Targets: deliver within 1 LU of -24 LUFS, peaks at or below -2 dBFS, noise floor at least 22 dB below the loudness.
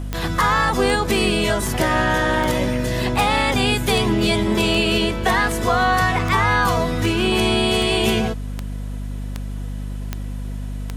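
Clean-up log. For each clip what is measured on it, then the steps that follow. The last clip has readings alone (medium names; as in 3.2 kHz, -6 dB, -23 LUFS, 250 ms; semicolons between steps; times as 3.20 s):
clicks found 15; hum 50 Hz; highest harmonic 250 Hz; hum level -25 dBFS; loudness -18.5 LUFS; peak level -4.5 dBFS; loudness target -24.0 LUFS
-> de-click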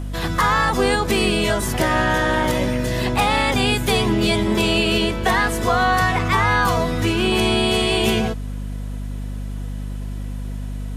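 clicks found 0; hum 50 Hz; highest harmonic 250 Hz; hum level -25 dBFS
-> de-hum 50 Hz, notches 5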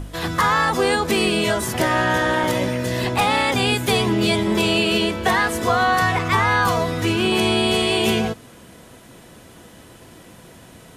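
hum not found; loudness -19.0 LUFS; peak level -5.5 dBFS; loudness target -24.0 LUFS
-> trim -5 dB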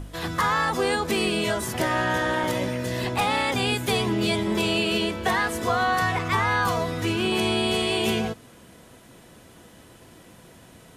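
loudness -24.0 LUFS; peak level -10.5 dBFS; noise floor -50 dBFS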